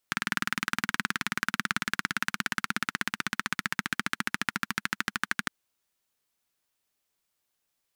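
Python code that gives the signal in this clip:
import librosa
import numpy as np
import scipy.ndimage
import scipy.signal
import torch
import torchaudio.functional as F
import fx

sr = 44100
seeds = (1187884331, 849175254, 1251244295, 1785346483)

y = fx.engine_single_rev(sr, seeds[0], length_s=5.36, rpm=2400, resonances_hz=(210.0, 1500.0), end_rpm=1500)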